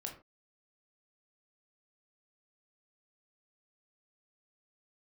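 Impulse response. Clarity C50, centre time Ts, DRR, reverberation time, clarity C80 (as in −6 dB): 9.0 dB, 18 ms, 1.0 dB, non-exponential decay, 14.0 dB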